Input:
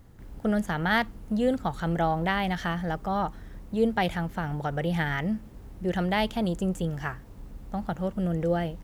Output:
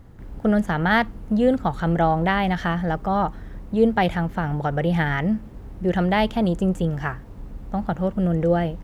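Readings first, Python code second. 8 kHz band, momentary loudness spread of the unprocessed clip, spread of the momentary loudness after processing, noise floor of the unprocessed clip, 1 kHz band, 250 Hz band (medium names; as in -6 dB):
no reading, 9 LU, 9 LU, -47 dBFS, +6.0 dB, +6.5 dB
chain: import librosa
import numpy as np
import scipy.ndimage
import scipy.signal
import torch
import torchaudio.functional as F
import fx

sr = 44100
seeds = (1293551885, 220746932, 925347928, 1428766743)

y = fx.high_shelf(x, sr, hz=3600.0, db=-9.5)
y = F.gain(torch.from_numpy(y), 6.5).numpy()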